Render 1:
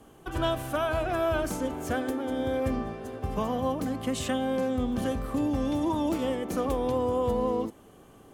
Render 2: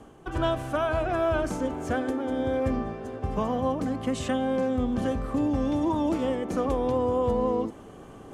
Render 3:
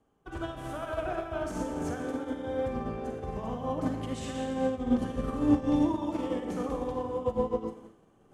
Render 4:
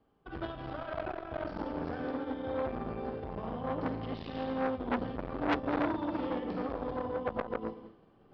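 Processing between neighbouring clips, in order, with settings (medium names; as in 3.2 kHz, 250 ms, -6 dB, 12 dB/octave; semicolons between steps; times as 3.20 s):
low-pass 7 kHz 12 dB/octave; peaking EQ 3.8 kHz -4.5 dB 1.5 oct; reverse; upward compressor, threshold -39 dBFS; reverse; trim +2 dB
peak limiter -26 dBFS, peak gain reduction 10 dB; reverberation RT60 1.3 s, pre-delay 37 ms, DRR 0.5 dB; upward expansion 2.5:1, over -44 dBFS; trim +6.5 dB
tracing distortion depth 0.045 ms; resampled via 11.025 kHz; transformer saturation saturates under 1.9 kHz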